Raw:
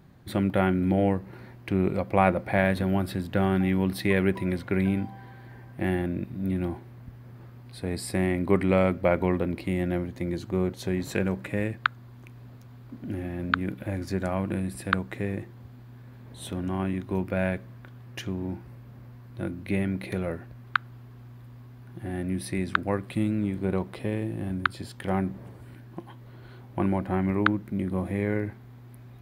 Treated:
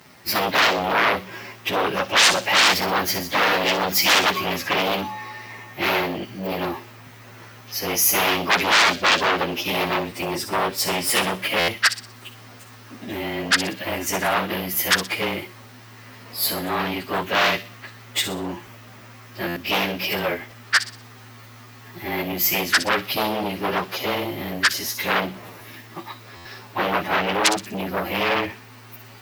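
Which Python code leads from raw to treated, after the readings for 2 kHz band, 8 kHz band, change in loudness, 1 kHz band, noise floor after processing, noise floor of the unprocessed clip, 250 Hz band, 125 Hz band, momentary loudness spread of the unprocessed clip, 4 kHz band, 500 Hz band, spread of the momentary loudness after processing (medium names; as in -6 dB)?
+12.0 dB, +20.5 dB, +7.0 dB, +10.0 dB, -44 dBFS, -47 dBFS, -3.0 dB, -6.0 dB, 23 LU, +22.0 dB, +3.0 dB, 18 LU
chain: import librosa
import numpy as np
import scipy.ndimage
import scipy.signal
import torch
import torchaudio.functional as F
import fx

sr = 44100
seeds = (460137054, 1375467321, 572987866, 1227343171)

y = fx.partial_stretch(x, sr, pct=108)
y = fx.fold_sine(y, sr, drive_db=18, ceiling_db=-8.5)
y = fx.highpass(y, sr, hz=1500.0, slope=6)
y = fx.high_shelf(y, sr, hz=9600.0, db=4.5)
y = fx.echo_wet_highpass(y, sr, ms=61, feedback_pct=39, hz=3700.0, wet_db=-7.5)
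y = fx.buffer_glitch(y, sr, at_s=(11.59, 19.47, 26.36), block=512, repeats=7)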